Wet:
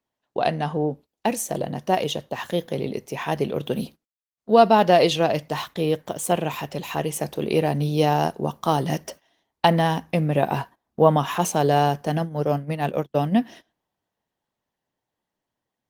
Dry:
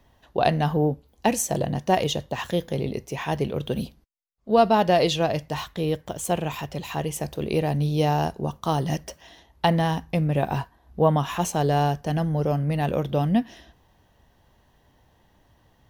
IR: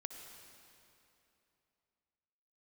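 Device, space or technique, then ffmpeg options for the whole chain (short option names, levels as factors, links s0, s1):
video call: -filter_complex "[0:a]asplit=3[s0][s1][s2];[s0]afade=t=out:st=12.17:d=0.02[s3];[s1]agate=range=0.00447:threshold=0.0708:ratio=16:detection=peak,afade=t=in:st=12.17:d=0.02,afade=t=out:st=13.36:d=0.02[s4];[s2]afade=t=in:st=13.36:d=0.02[s5];[s3][s4][s5]amix=inputs=3:normalize=0,highpass=170,dynaudnorm=f=330:g=17:m=5.31,agate=range=0.112:threshold=0.0112:ratio=16:detection=peak,volume=0.891" -ar 48000 -c:a libopus -b:a 24k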